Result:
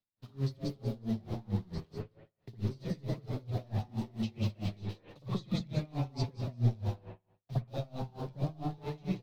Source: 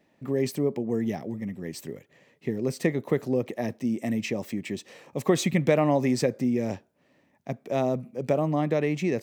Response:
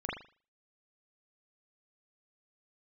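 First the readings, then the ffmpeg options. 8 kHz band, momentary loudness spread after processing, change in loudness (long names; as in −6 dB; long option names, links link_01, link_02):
below −15 dB, 11 LU, −9.5 dB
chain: -filter_complex "[0:a]aeval=exprs='val(0)+0.5*0.0224*sgn(val(0))':channel_layout=same,asplit=6[link_01][link_02][link_03][link_04][link_05][link_06];[link_02]adelay=182,afreqshift=130,volume=-4.5dB[link_07];[link_03]adelay=364,afreqshift=260,volume=-13.4dB[link_08];[link_04]adelay=546,afreqshift=390,volume=-22.2dB[link_09];[link_05]adelay=728,afreqshift=520,volume=-31.1dB[link_10];[link_06]adelay=910,afreqshift=650,volume=-40dB[link_11];[link_01][link_07][link_08][link_09][link_10][link_11]amix=inputs=6:normalize=0,acrossover=split=5000[link_12][link_13];[link_13]acompressor=threshold=-50dB:ratio=4:attack=1:release=60[link_14];[link_12][link_14]amix=inputs=2:normalize=0,lowshelf=frequency=66:gain=10.5,agate=range=-45dB:threshold=-31dB:ratio=16:detection=peak,equalizer=frequency=125:width_type=o:width=1:gain=7,equalizer=frequency=250:width_type=o:width=1:gain=-5,equalizer=frequency=500:width_type=o:width=1:gain=-6,equalizer=frequency=2000:width_type=o:width=1:gain=-10,equalizer=frequency=4000:width_type=o:width=1:gain=11,equalizer=frequency=8000:width_type=o:width=1:gain=-7,acrossover=split=160|3100[link_15][link_16][link_17];[link_16]acompressor=threshold=-37dB:ratio=6[link_18];[link_15][link_18][link_17]amix=inputs=3:normalize=0,flanger=delay=9.1:depth=4:regen=-81:speed=0.35:shape=triangular[link_19];[1:a]atrim=start_sample=2205,asetrate=29547,aresample=44100[link_20];[link_19][link_20]afir=irnorm=-1:irlink=0,flanger=delay=9.1:depth=1.5:regen=38:speed=0.9:shape=sinusoidal,aeval=exprs='val(0)*pow(10,-26*(0.5-0.5*cos(2*PI*4.5*n/s))/20)':channel_layout=same,volume=2dB"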